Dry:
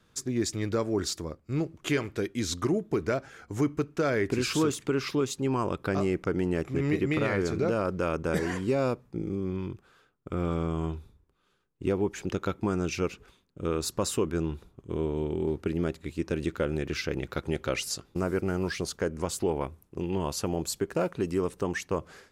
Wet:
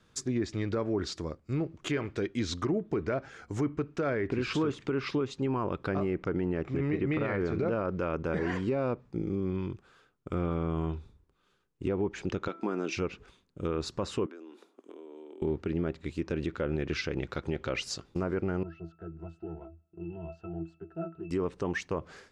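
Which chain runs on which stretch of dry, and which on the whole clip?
0:12.48–0:12.97: high-pass filter 220 Hz 24 dB per octave + hum removal 332.9 Hz, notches 7
0:14.26–0:15.42: Butterworth high-pass 250 Hz 48 dB per octave + downward compressor 8 to 1, threshold −44 dBFS
0:18.63–0:21.31: mid-hump overdrive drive 13 dB, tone 1,900 Hz, clips at −16 dBFS + resonances in every octave E, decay 0.19 s
whole clip: treble cut that deepens with the level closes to 2,400 Hz, closed at −23.5 dBFS; low-pass filter 9,900 Hz; brickwall limiter −21.5 dBFS

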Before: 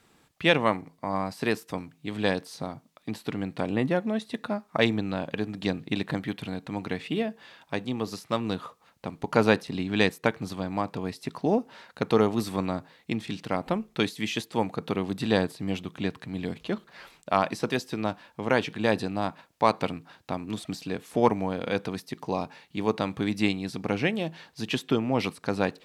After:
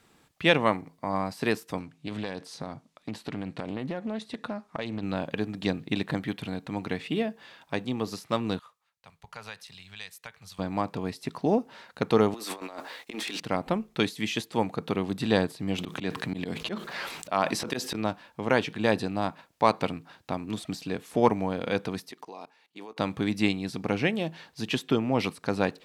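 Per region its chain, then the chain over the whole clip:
0:01.80–0:05.03: low-pass filter 9,700 Hz + downward compressor 12 to 1, threshold −28 dBFS + highs frequency-modulated by the lows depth 0.16 ms
0:08.59–0:10.59: guitar amp tone stack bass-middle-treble 10-0-10 + downward compressor 3 to 1, threshold −41 dBFS + multiband upward and downward expander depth 70%
0:12.34–0:13.40: Bessel high-pass filter 470 Hz, order 4 + compressor whose output falls as the input rises −45 dBFS + leveller curve on the samples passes 2
0:15.78–0:17.95: high-pass filter 160 Hz 6 dB per octave + volume swells 144 ms + envelope flattener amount 50%
0:22.11–0:22.99: high-pass filter 360 Hz + notch filter 570 Hz, Q 11 + output level in coarse steps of 21 dB
whole clip: no processing

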